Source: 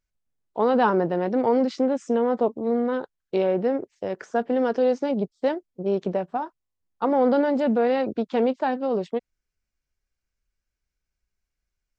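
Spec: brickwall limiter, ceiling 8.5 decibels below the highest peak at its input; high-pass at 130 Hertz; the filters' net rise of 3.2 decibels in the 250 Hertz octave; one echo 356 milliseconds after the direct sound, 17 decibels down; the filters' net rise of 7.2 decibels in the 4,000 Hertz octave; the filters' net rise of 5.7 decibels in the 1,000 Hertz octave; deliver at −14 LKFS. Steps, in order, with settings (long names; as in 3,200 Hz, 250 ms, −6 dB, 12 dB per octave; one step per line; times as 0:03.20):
high-pass filter 130 Hz
parametric band 250 Hz +3.5 dB
parametric band 1,000 Hz +7 dB
parametric band 4,000 Hz +9 dB
brickwall limiter −12 dBFS
single-tap delay 356 ms −17 dB
level +8.5 dB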